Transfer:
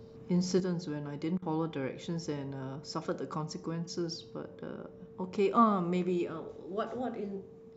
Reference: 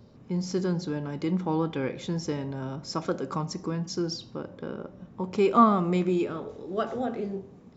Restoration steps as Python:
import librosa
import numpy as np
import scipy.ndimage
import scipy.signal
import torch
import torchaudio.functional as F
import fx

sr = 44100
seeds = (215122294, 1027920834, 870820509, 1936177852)

y = fx.notch(x, sr, hz=450.0, q=30.0)
y = fx.fix_interpolate(y, sr, at_s=(1.38,), length_ms=41.0)
y = fx.gain(y, sr, db=fx.steps((0.0, 0.0), (0.6, 6.0)))